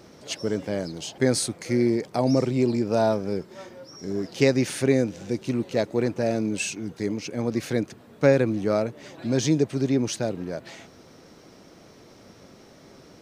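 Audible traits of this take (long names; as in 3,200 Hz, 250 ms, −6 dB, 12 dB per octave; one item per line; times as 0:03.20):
background noise floor −51 dBFS
spectral slope −5.5 dB per octave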